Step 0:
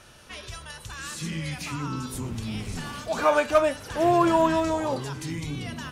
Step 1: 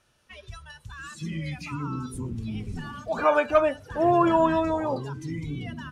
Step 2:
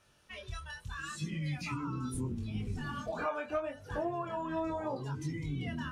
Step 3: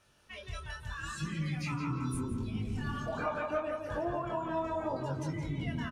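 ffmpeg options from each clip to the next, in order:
-af "afftdn=nr=16:nf=-34"
-af "acompressor=threshold=-33dB:ratio=8,flanger=delay=20:depth=4.6:speed=0.76,volume=3dB"
-filter_complex "[0:a]asplit=2[a][b];[b]adelay=169,lowpass=f=2.9k:p=1,volume=-4dB,asplit=2[c][d];[d]adelay=169,lowpass=f=2.9k:p=1,volume=0.51,asplit=2[e][f];[f]adelay=169,lowpass=f=2.9k:p=1,volume=0.51,asplit=2[g][h];[h]adelay=169,lowpass=f=2.9k:p=1,volume=0.51,asplit=2[i][j];[j]adelay=169,lowpass=f=2.9k:p=1,volume=0.51,asplit=2[k][l];[l]adelay=169,lowpass=f=2.9k:p=1,volume=0.51,asplit=2[m][n];[n]adelay=169,lowpass=f=2.9k:p=1,volume=0.51[o];[a][c][e][g][i][k][m][o]amix=inputs=8:normalize=0"

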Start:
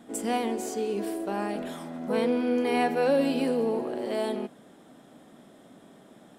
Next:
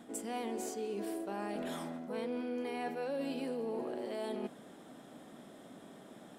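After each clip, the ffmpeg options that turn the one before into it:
-af "areverse,acompressor=threshold=-36dB:ratio=5,areverse,lowshelf=f=140:g=-3.5"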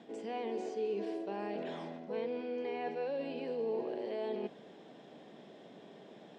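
-filter_complex "[0:a]highpass=120,equalizer=f=260:t=q:w=4:g=-6,equalizer=f=430:t=q:w=4:g=5,equalizer=f=1.3k:t=q:w=4:g=-9,equalizer=f=2.7k:t=q:w=4:g=3,lowpass=f=5.5k:w=0.5412,lowpass=f=5.5k:w=1.3066,acrossover=split=2700[a][b];[b]acompressor=threshold=-58dB:ratio=4:attack=1:release=60[c];[a][c]amix=inputs=2:normalize=0"

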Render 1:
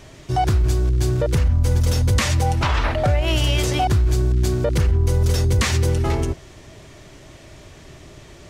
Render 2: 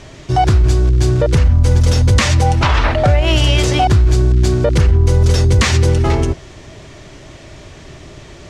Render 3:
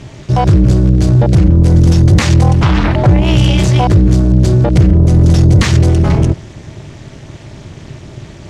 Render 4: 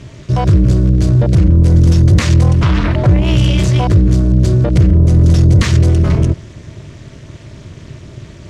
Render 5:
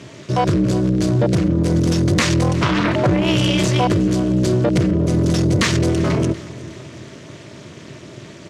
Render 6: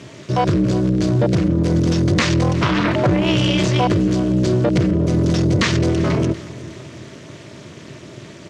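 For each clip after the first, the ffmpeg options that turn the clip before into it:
-af "lowpass=7.8k,volume=6.5dB"
-af "tremolo=f=250:d=0.974,equalizer=f=120:w=0.85:g=10,acontrast=27,volume=-1dB"
-af "equalizer=f=79:t=o:w=1.1:g=3,bandreject=f=810:w=5.3,volume=-3dB"
-af "highpass=210,aecho=1:1:365|730|1095|1460:0.112|0.0583|0.0303|0.0158,volume=1.5dB"
-filter_complex "[0:a]acrossover=split=7100[a][b];[b]acompressor=threshold=-52dB:ratio=4:attack=1:release=60[c];[a][c]amix=inputs=2:normalize=0"

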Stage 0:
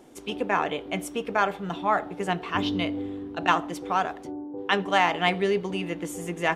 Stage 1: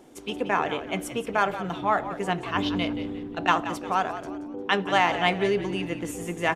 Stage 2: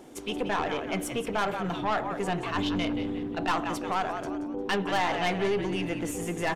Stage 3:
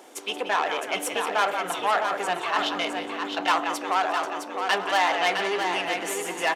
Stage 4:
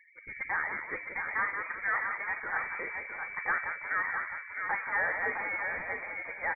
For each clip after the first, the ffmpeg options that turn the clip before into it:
-filter_complex "[0:a]asplit=5[a][b][c][d][e];[b]adelay=177,afreqshift=-61,volume=-12dB[f];[c]adelay=354,afreqshift=-122,volume=-20.6dB[g];[d]adelay=531,afreqshift=-183,volume=-29.3dB[h];[e]adelay=708,afreqshift=-244,volume=-37.9dB[i];[a][f][g][h][i]amix=inputs=5:normalize=0"
-filter_complex "[0:a]aeval=exprs='(tanh(11.2*val(0)+0.35)-tanh(0.35))/11.2':c=same,asplit=2[a][b];[b]alimiter=level_in=6dB:limit=-24dB:level=0:latency=1,volume=-6dB,volume=1dB[c];[a][c]amix=inputs=2:normalize=0,volume=-2.5dB"
-af "highpass=590,aecho=1:1:661|1322|1983:0.501|0.0902|0.0162,volume=6dB"
-af "afftfilt=real='re*gte(hypot(re,im),0.0126)':imag='im*gte(hypot(re,im),0.0126)':win_size=1024:overlap=0.75,lowpass=f=2.2k:t=q:w=0.5098,lowpass=f=2.2k:t=q:w=0.6013,lowpass=f=2.2k:t=q:w=0.9,lowpass=f=2.2k:t=q:w=2.563,afreqshift=-2600,volume=-7.5dB"

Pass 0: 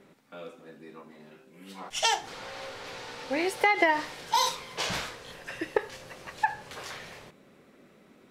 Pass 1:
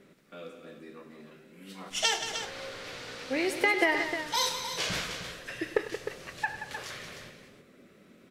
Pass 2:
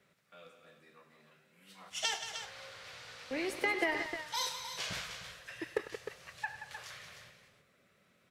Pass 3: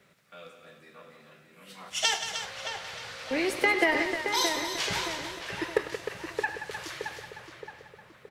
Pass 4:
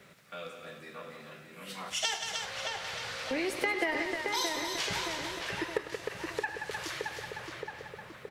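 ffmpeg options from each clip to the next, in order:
-filter_complex "[0:a]equalizer=f=870:w=2.5:g=-9,asplit=2[a][b];[b]aecho=0:1:100|178|307:0.188|0.299|0.335[c];[a][c]amix=inputs=2:normalize=0"
-filter_complex "[0:a]highpass=53,acrossover=split=170|510|2600[a][b][c][d];[b]acrusher=bits=5:mix=0:aa=0.5[e];[a][e][c][d]amix=inputs=4:normalize=0,volume=-7dB"
-filter_complex "[0:a]asplit=2[a][b];[b]adelay=621,lowpass=f=2k:p=1,volume=-6dB,asplit=2[c][d];[d]adelay=621,lowpass=f=2k:p=1,volume=0.51,asplit=2[e][f];[f]adelay=621,lowpass=f=2k:p=1,volume=0.51,asplit=2[g][h];[h]adelay=621,lowpass=f=2k:p=1,volume=0.51,asplit=2[i][j];[j]adelay=621,lowpass=f=2k:p=1,volume=0.51,asplit=2[k][l];[l]adelay=621,lowpass=f=2k:p=1,volume=0.51[m];[a][c][e][g][i][k][m]amix=inputs=7:normalize=0,volume=8dB"
-af "acompressor=threshold=-44dB:ratio=2,volume=6dB"

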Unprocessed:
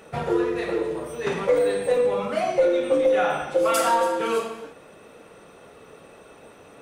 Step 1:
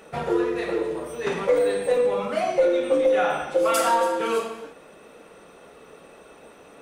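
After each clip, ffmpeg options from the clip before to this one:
-af "equalizer=f=110:w=2.7:g=-11"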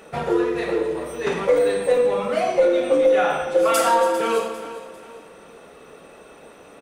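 -af "aecho=1:1:399|798|1197:0.178|0.0676|0.0257,volume=2.5dB"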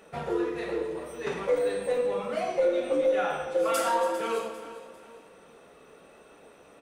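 -af "flanger=delay=9.5:depth=9.9:regen=70:speed=0.94:shape=triangular,volume=-4dB"

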